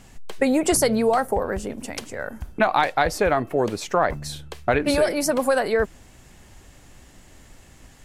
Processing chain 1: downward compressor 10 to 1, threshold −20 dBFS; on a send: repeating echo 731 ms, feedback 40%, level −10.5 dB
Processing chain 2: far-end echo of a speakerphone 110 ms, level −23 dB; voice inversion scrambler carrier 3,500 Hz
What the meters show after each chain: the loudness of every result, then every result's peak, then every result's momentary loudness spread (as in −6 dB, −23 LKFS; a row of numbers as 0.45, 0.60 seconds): −27.0, −19.5 LKFS; −8.0, −5.0 dBFS; 17, 13 LU